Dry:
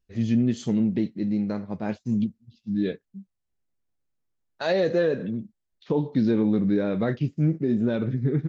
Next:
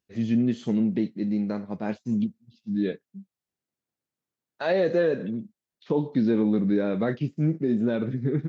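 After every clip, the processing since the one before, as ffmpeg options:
-filter_complex "[0:a]highpass=140,acrossover=split=3700[s0][s1];[s1]acompressor=threshold=0.002:ratio=4:attack=1:release=60[s2];[s0][s2]amix=inputs=2:normalize=0"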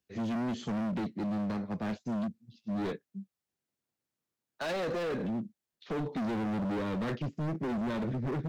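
-filter_complex "[0:a]acrossover=split=220|300|1400[s0][s1][s2][s3];[s2]alimiter=level_in=1.06:limit=0.0631:level=0:latency=1:release=27,volume=0.944[s4];[s0][s1][s4][s3]amix=inputs=4:normalize=0,asoftclip=type=hard:threshold=0.0282"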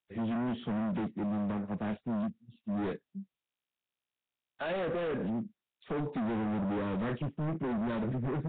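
-af "agate=range=0.0224:threshold=0.00178:ratio=3:detection=peak" -ar 8000 -c:a nellymoser

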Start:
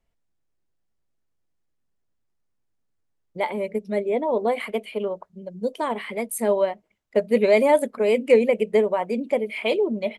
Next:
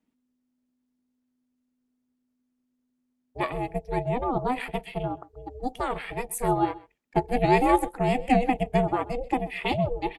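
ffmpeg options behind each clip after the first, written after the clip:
-af "bandreject=f=470:w=12,aeval=exprs='val(0)*sin(2*PI*250*n/s)':c=same,aecho=1:1:130:0.0944"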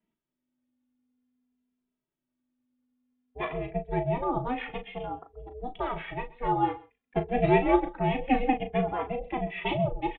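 -filter_complex "[0:a]asplit=2[s0][s1];[s1]adelay=37,volume=0.355[s2];[s0][s2]amix=inputs=2:normalize=0,aresample=8000,aresample=44100,asplit=2[s3][s4];[s4]adelay=2.6,afreqshift=-0.53[s5];[s3][s5]amix=inputs=2:normalize=1"

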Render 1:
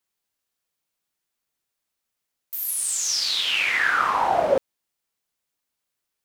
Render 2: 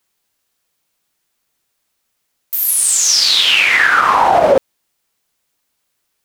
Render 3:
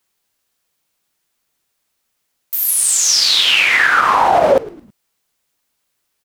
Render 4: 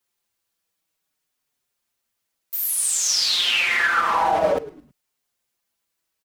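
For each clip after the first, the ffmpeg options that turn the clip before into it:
-af "alimiter=level_in=4.47:limit=0.891:release=50:level=0:latency=1,volume=0.891"
-filter_complex "[0:a]asplit=4[s0][s1][s2][s3];[s1]adelay=108,afreqshift=-110,volume=0.119[s4];[s2]adelay=216,afreqshift=-220,volume=0.0462[s5];[s3]adelay=324,afreqshift=-330,volume=0.018[s6];[s0][s4][s5][s6]amix=inputs=4:normalize=0,volume=0.891"
-filter_complex "[0:a]asplit=2[s0][s1];[s1]adelay=5.2,afreqshift=-0.57[s2];[s0][s2]amix=inputs=2:normalize=1,volume=0.596"

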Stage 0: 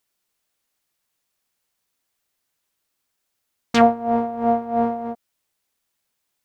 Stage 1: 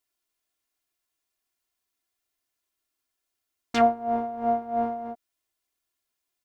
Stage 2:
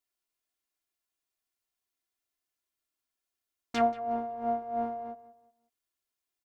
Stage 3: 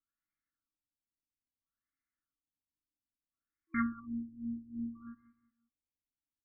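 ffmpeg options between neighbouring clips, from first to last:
-af "aecho=1:1:2.9:0.61,volume=0.398"
-filter_complex "[0:a]asplit=2[s0][s1];[s1]adelay=182,lowpass=f=3300:p=1,volume=0.158,asplit=2[s2][s3];[s3]adelay=182,lowpass=f=3300:p=1,volume=0.33,asplit=2[s4][s5];[s5]adelay=182,lowpass=f=3300:p=1,volume=0.33[s6];[s0][s2][s4][s6]amix=inputs=4:normalize=0,volume=0.501"
-af "afftfilt=real='re*(1-between(b*sr/4096,330,1100))':imag='im*(1-between(b*sr/4096,330,1100))':win_size=4096:overlap=0.75,afftfilt=real='re*lt(b*sr/1024,470*pow(2400/470,0.5+0.5*sin(2*PI*0.6*pts/sr)))':imag='im*lt(b*sr/1024,470*pow(2400/470,0.5+0.5*sin(2*PI*0.6*pts/sr)))':win_size=1024:overlap=0.75,volume=1.12"

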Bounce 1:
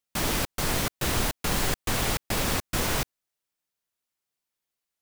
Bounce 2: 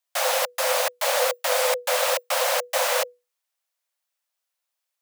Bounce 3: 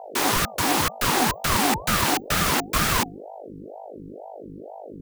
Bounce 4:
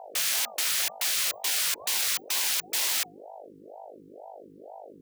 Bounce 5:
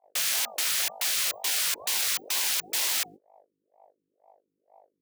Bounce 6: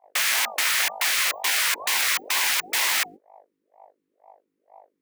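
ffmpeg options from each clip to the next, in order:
-af "afreqshift=490,volume=1.5"
-af "aeval=exprs='val(0)+0.0112*(sin(2*PI*50*n/s)+sin(2*PI*2*50*n/s)/2+sin(2*PI*3*50*n/s)/3+sin(2*PI*4*50*n/s)/4+sin(2*PI*5*50*n/s)/5)':c=same,aeval=exprs='val(0)*sin(2*PI*470*n/s+470*0.55/2.1*sin(2*PI*2.1*n/s))':c=same,volume=1.58"
-af "afftfilt=real='re*lt(hypot(re,im),0.1)':imag='im*lt(hypot(re,im),0.1)':win_size=1024:overlap=0.75,highpass=f=940:p=1"
-af "agate=range=0.0282:threshold=0.00891:ratio=16:detection=peak"
-af "equalizer=f=125:t=o:w=1:g=-7,equalizer=f=250:t=o:w=1:g=4,equalizer=f=1000:t=o:w=1:g=8,equalizer=f=2000:t=o:w=1:g=9,volume=1.19"

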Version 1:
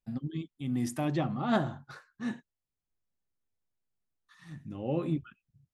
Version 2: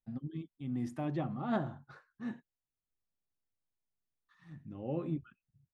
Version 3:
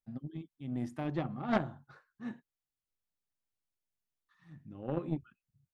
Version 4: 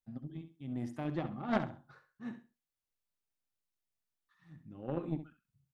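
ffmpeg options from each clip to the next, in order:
-af "lowpass=f=1700:p=1,volume=0.562"
-af "aeval=exprs='0.0841*(cos(1*acos(clip(val(0)/0.0841,-1,1)))-cos(1*PI/2))+0.0188*(cos(3*acos(clip(val(0)/0.0841,-1,1)))-cos(3*PI/2))':c=same,volume=2.24"
-af "aecho=1:1:67|134|201:0.282|0.0592|0.0124,volume=0.794"

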